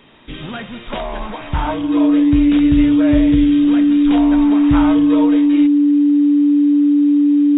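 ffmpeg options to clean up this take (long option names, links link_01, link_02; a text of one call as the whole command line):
ffmpeg -i in.wav -af "bandreject=frequency=290:width=30" out.wav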